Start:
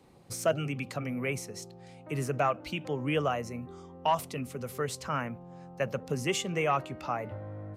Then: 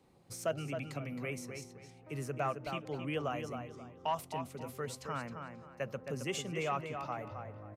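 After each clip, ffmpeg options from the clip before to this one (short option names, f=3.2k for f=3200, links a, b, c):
-filter_complex "[0:a]asplit=2[a][b];[b]adelay=267,lowpass=f=3.8k:p=1,volume=-6.5dB,asplit=2[c][d];[d]adelay=267,lowpass=f=3.8k:p=1,volume=0.29,asplit=2[e][f];[f]adelay=267,lowpass=f=3.8k:p=1,volume=0.29,asplit=2[g][h];[h]adelay=267,lowpass=f=3.8k:p=1,volume=0.29[i];[a][c][e][g][i]amix=inputs=5:normalize=0,volume=-7.5dB"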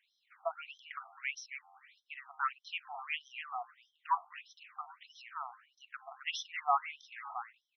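-af "asuperstop=centerf=4600:order=4:qfactor=6,equalizer=f=3.2k:t=o:w=0.88:g=-2.5,afftfilt=real='re*between(b*sr/1024,920*pow(4400/920,0.5+0.5*sin(2*PI*1.6*pts/sr))/1.41,920*pow(4400/920,0.5+0.5*sin(2*PI*1.6*pts/sr))*1.41)':imag='im*between(b*sr/1024,920*pow(4400/920,0.5+0.5*sin(2*PI*1.6*pts/sr))/1.41,920*pow(4400/920,0.5+0.5*sin(2*PI*1.6*pts/sr))*1.41)':win_size=1024:overlap=0.75,volume=8dB"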